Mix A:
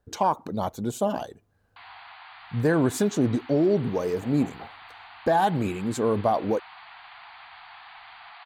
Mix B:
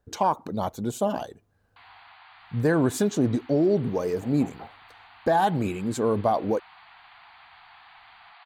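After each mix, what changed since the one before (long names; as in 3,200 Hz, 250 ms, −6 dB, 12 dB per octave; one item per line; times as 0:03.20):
background −5.0 dB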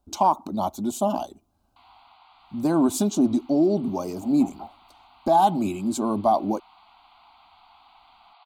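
speech +4.5 dB
master: add phaser with its sweep stopped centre 470 Hz, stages 6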